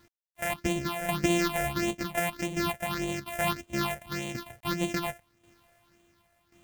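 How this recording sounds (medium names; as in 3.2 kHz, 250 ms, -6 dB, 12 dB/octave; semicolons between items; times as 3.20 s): a buzz of ramps at a fixed pitch in blocks of 128 samples; phasing stages 6, 1.7 Hz, lowest notch 290–1400 Hz; a quantiser's noise floor 12-bit, dither none; tremolo saw down 0.92 Hz, depth 65%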